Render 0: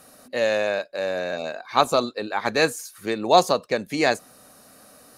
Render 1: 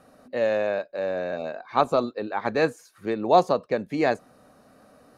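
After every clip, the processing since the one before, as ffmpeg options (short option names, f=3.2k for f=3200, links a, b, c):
-af "lowpass=f=1.1k:p=1"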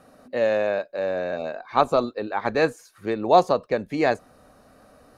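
-af "asubboost=boost=3.5:cutoff=83,volume=2dB"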